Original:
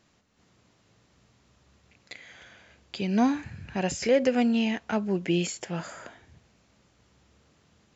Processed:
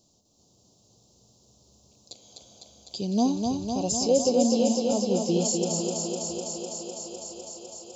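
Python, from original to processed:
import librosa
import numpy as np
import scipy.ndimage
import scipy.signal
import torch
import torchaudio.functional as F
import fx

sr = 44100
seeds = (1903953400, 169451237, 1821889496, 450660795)

p1 = scipy.signal.sosfilt(scipy.signal.cheby1(2, 1.0, [700.0, 4700.0], 'bandstop', fs=sr, output='sos'), x)
p2 = fx.high_shelf(p1, sr, hz=3500.0, db=10.0)
y = p2 + fx.echo_thinned(p2, sr, ms=252, feedback_pct=84, hz=150.0, wet_db=-3.5, dry=0)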